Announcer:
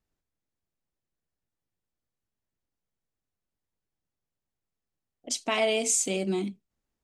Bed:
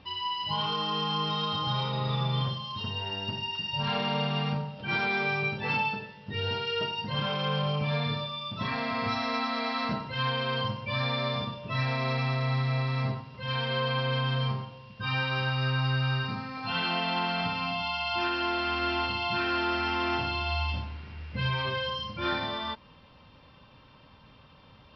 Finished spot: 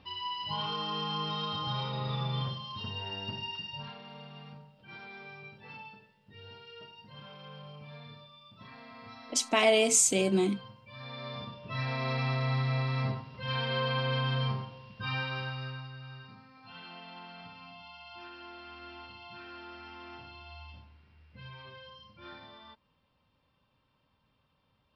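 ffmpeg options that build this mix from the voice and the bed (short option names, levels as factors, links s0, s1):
-filter_complex "[0:a]adelay=4050,volume=1.26[s0];[1:a]volume=4.22,afade=t=out:st=3.5:d=0.45:silence=0.188365,afade=t=in:st=10.92:d=1.37:silence=0.141254,afade=t=out:st=14.85:d=1.05:silence=0.149624[s1];[s0][s1]amix=inputs=2:normalize=0"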